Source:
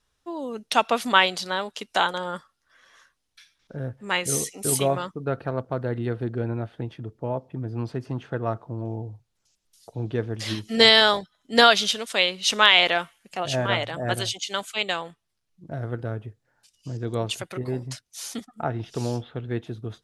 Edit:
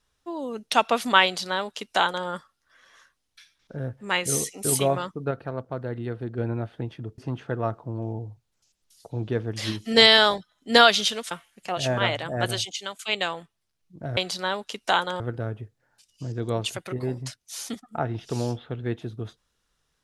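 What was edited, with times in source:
1.24–2.27 s: copy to 15.85 s
5.31–6.38 s: gain -4 dB
7.18–8.01 s: delete
12.14–12.99 s: delete
14.24–14.67 s: fade out equal-power, to -15 dB

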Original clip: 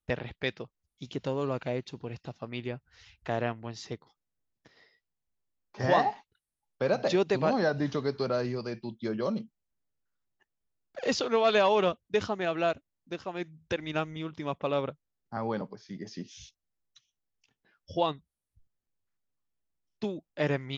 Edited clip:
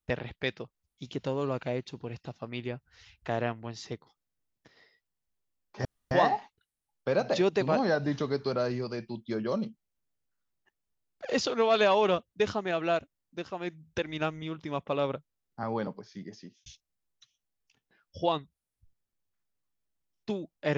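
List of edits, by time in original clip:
5.85 s: insert room tone 0.26 s
15.86–16.40 s: fade out

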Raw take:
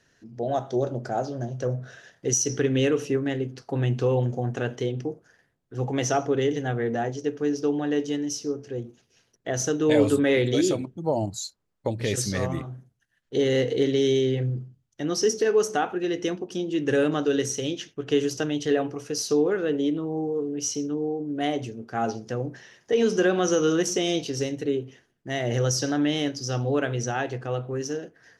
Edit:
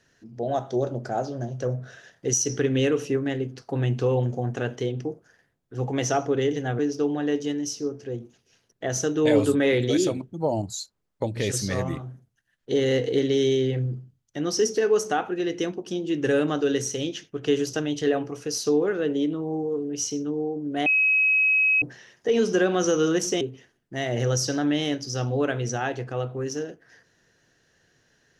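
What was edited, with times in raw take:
6.79–7.43 s: delete
21.50–22.46 s: bleep 2.55 kHz -17 dBFS
24.05–24.75 s: delete

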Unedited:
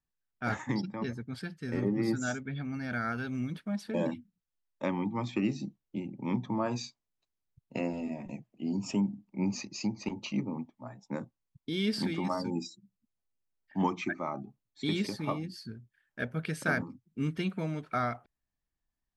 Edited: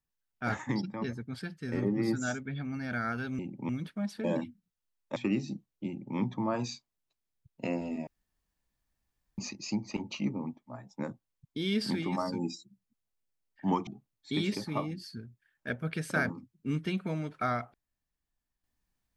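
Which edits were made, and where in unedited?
4.86–5.28 s: delete
5.99–6.29 s: copy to 3.39 s
8.19–9.50 s: room tone
13.99–14.39 s: delete

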